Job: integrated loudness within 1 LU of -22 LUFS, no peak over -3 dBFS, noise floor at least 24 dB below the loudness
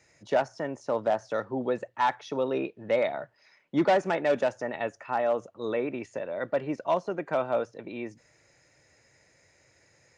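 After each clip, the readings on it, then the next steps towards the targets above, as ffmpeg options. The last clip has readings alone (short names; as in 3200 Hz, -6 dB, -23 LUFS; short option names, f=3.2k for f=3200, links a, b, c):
loudness -29.5 LUFS; peak -13.0 dBFS; loudness target -22.0 LUFS
-> -af "volume=7.5dB"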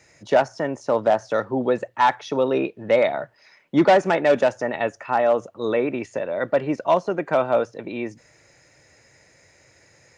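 loudness -22.0 LUFS; peak -5.5 dBFS; noise floor -57 dBFS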